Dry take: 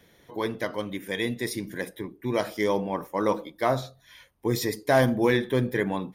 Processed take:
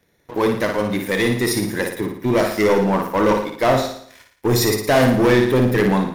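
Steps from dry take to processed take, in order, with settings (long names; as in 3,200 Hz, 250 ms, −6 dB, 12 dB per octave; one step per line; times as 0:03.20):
notch filter 3,200 Hz, Q 6.5
leveller curve on the samples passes 3
flutter between parallel walls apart 9.8 metres, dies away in 0.6 s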